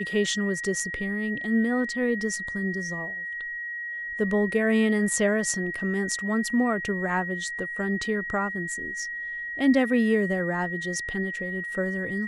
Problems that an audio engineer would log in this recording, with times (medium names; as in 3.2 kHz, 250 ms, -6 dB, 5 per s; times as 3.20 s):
whine 1.9 kHz -31 dBFS